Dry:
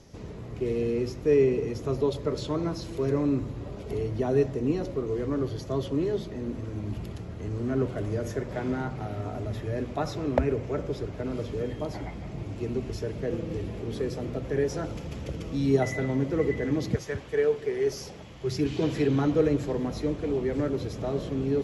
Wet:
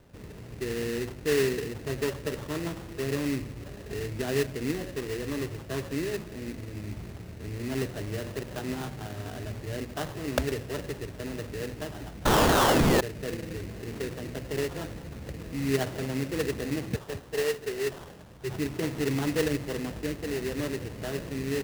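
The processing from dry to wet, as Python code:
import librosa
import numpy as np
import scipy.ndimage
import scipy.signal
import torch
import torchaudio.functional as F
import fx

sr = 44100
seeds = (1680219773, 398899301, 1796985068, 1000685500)

y = fx.spec_paint(x, sr, seeds[0], shape='fall', start_s=12.25, length_s=0.76, low_hz=1700.0, high_hz=6600.0, level_db=-17.0)
y = fx.sample_hold(y, sr, seeds[1], rate_hz=2300.0, jitter_pct=20)
y = F.gain(torch.from_numpy(y), -4.0).numpy()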